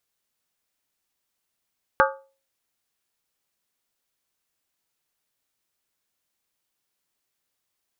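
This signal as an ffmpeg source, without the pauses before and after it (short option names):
-f lavfi -i "aevalsrc='0.158*pow(10,-3*t/0.37)*sin(2*PI*542*t)+0.15*pow(10,-3*t/0.293)*sin(2*PI*863.9*t)+0.141*pow(10,-3*t/0.253)*sin(2*PI*1157.7*t)+0.133*pow(10,-3*t/0.244)*sin(2*PI*1244.4*t)+0.126*pow(10,-3*t/0.227)*sin(2*PI*1437.9*t)+0.119*pow(10,-3*t/0.217)*sin(2*PI*1581.6*t)':d=0.63:s=44100"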